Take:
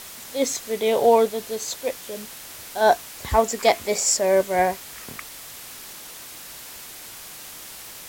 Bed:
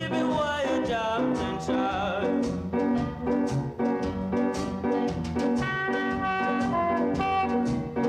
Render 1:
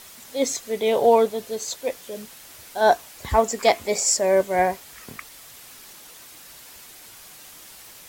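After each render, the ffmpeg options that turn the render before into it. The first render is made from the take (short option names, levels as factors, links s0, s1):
-af "afftdn=nr=6:nf=-40"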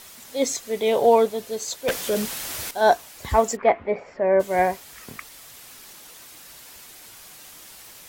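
-filter_complex "[0:a]asettb=1/sr,asplit=3[s0][s1][s2];[s0]atrim=end=0.764[s3];[s1]atrim=start=0.76:end=1.21,asetpts=PTS-STARTPTS,afade=t=in:d=0.004:c=qsin,afade=t=out:st=0.446:d=0.004:c=qsin,aeval=exprs='val(0)*gte(abs(val(0)),0.00596)':c=same[s4];[s2]atrim=start=1.206[s5];[s3][s4]acrossfade=d=0.004:c1=hsin:c2=qsin[s6];[s6][s5]acrossfade=d=0.004:c1=qsin:c2=hsin,asettb=1/sr,asplit=3[s7][s8][s9];[s7]atrim=end=1.884[s10];[s8]atrim=start=1.88:end=2.71,asetpts=PTS-STARTPTS,afade=t=in:d=0.004:c=qsin,afade=t=out:st=0.826:d=0.004:c=qsin,aeval=exprs='0.133*sin(PI/2*2.82*val(0)/0.133)':c=same[s11];[s9]atrim=start=2.706[s12];[s10][s11]acrossfade=d=0.004:c1=hsin:c2=qsin[s13];[s13][s12]acrossfade=d=0.004:c1=qsin:c2=hsin,asplit=3[s14][s15][s16];[s14]afade=t=out:st=3.55:d=0.02[s17];[s15]lowpass=f=2100:w=0.5412,lowpass=f=2100:w=1.3066,afade=t=in:st=3.55:d=0.02,afade=t=out:st=4.39:d=0.02[s18];[s16]afade=t=in:st=4.39:d=0.02[s19];[s17][s18][s19]amix=inputs=3:normalize=0"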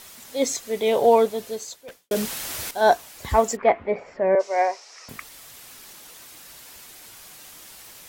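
-filter_complex "[0:a]asettb=1/sr,asplit=3[s0][s1][s2];[s0]atrim=end=4.354[s3];[s1]atrim=start=4.35:end=5.09,asetpts=PTS-STARTPTS,afade=t=in:d=0.004:c=qsin,afade=t=out:st=0.736:d=0.004:c=qsin,highpass=f=440:w=0.5412,highpass=f=440:w=1.3066,equalizer=f=1600:t=q:w=4:g=-5,equalizer=f=3300:t=q:w=4:g=-8,equalizer=f=5500:t=q:w=4:g=10,lowpass=f=6600:w=0.5412,lowpass=f=6600:w=1.3066[s4];[s2]atrim=start=5.086[s5];[s3][s4]acrossfade=d=0.004:c1=hsin:c2=qsin[s6];[s6][s5]acrossfade=d=0.004:c1=qsin:c2=hsin,asplit=2[s7][s8];[s7]atrim=end=2.11,asetpts=PTS-STARTPTS,afade=t=out:st=1.49:d=0.62:c=qua[s9];[s8]atrim=start=2.11,asetpts=PTS-STARTPTS,afade=t=in:d=0.004:c=hsin[s10];[s9][s10]concat=n=2:v=0:a=1"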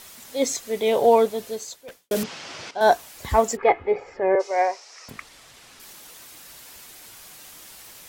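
-filter_complex "[0:a]asettb=1/sr,asplit=3[s0][s1][s2];[s0]atrim=end=2.234[s3];[s1]atrim=start=2.23:end=2.81,asetpts=PTS-STARTPTS,afade=t=in:d=0.004:c=qsin,afade=t=out:st=0.576:d=0.004:c=qsin,highpass=f=120:w=0.5412,highpass=f=120:w=1.3066,equalizer=f=230:t=q:w=4:g=-4,equalizer=f=1800:t=q:w=4:g=-3,equalizer=f=3900:t=q:w=4:g=-5,lowpass=f=5300:w=0.5412,lowpass=f=5300:w=1.3066[s4];[s2]atrim=start=2.806[s5];[s3][s4]acrossfade=d=0.004:c1=hsin:c2=qsin[s6];[s6][s5]acrossfade=d=0.004:c1=qsin:c2=hsin,asettb=1/sr,asplit=3[s7][s8][s9];[s7]atrim=end=3.564[s10];[s8]atrim=start=3.56:end=4.51,asetpts=PTS-STARTPTS,afade=t=in:d=0.004:c=qsin,afade=t=out:st=0.946:d=0.004:c=qsin,aecho=1:1:2.4:0.65,atrim=end_sample=41895[s11];[s9]atrim=start=4.506[s12];[s10][s11]acrossfade=d=0.004:c1=hsin:c2=qsin[s13];[s13][s12]acrossfade=d=0.004:c1=qsin:c2=hsin,asettb=1/sr,asplit=3[s14][s15][s16];[s14]atrim=end=5.104[s17];[s15]atrim=start=5.1:end=5.8,asetpts=PTS-STARTPTS,afade=t=in:d=0.004:c=qsin,afade=t=out:st=0.696:d=0.004:c=qsin,adynamicsmooth=sensitivity=5.5:basefreq=7300[s18];[s16]atrim=start=5.796[s19];[s17][s18]acrossfade=d=0.004:c1=hsin:c2=qsin[s20];[s20][s19]acrossfade=d=0.004:c1=qsin:c2=hsin"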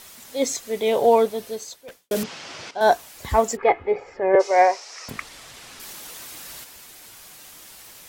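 -filter_complex "[0:a]asettb=1/sr,asplit=3[s0][s1][s2];[s0]atrim=end=1.224[s3];[s1]atrim=start=1.22:end=1.83,asetpts=PTS-STARTPTS,afade=t=in:d=0.004:c=qsin,afade=t=out:st=0.606:d=0.004:c=qsin,bandreject=f=7100:w=12[s4];[s2]atrim=start=1.826[s5];[s3][s4]acrossfade=d=0.004:c1=hsin:c2=qsin[s6];[s6][s5]acrossfade=d=0.004:c1=qsin:c2=hsin,asplit=3[s7][s8][s9];[s7]afade=t=out:st=4.33:d=0.02[s10];[s8]acontrast=49,afade=t=in:st=4.33:d=0.02,afade=t=out:st=6.63:d=0.02[s11];[s9]afade=t=in:st=6.63:d=0.02[s12];[s10][s11][s12]amix=inputs=3:normalize=0"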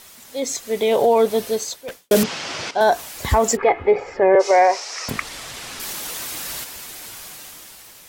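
-af "alimiter=limit=0.168:level=0:latency=1:release=80,dynaudnorm=f=130:g=13:m=2.82"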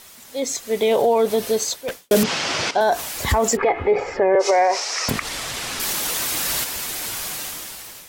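-af "dynaudnorm=f=570:g=5:m=4.47,alimiter=limit=0.335:level=0:latency=1:release=65"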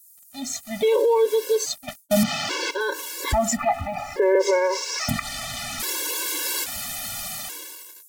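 -filter_complex "[0:a]acrossover=split=7600[s0][s1];[s0]aeval=exprs='val(0)*gte(abs(val(0)),0.0141)':c=same[s2];[s2][s1]amix=inputs=2:normalize=0,afftfilt=real='re*gt(sin(2*PI*0.6*pts/sr)*(1-2*mod(floor(b*sr/1024/290),2)),0)':imag='im*gt(sin(2*PI*0.6*pts/sr)*(1-2*mod(floor(b*sr/1024/290),2)),0)':win_size=1024:overlap=0.75"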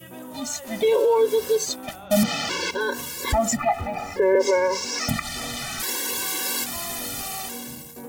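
-filter_complex "[1:a]volume=0.211[s0];[0:a][s0]amix=inputs=2:normalize=0"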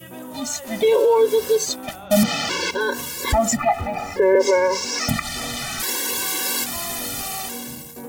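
-af "volume=1.41"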